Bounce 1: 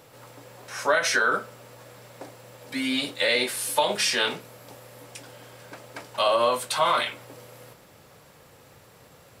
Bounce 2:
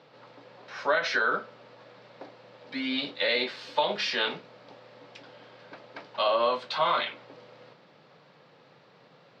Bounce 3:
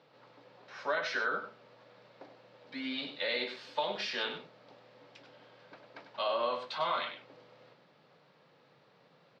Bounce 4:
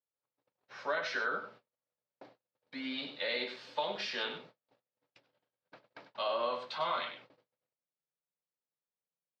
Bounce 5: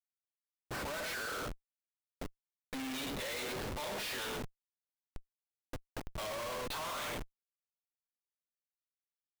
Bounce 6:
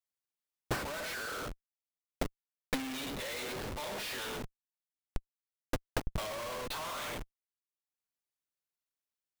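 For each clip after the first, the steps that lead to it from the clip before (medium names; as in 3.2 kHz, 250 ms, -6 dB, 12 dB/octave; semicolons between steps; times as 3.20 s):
elliptic band-pass 150–4400 Hz, stop band 40 dB; trim -3 dB
delay 98 ms -9.5 dB; trim -7.5 dB
gate -53 dBFS, range -39 dB; trim -1.5 dB
Schmitt trigger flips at -48.5 dBFS; trim +1.5 dB
transient shaper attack +11 dB, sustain -10 dB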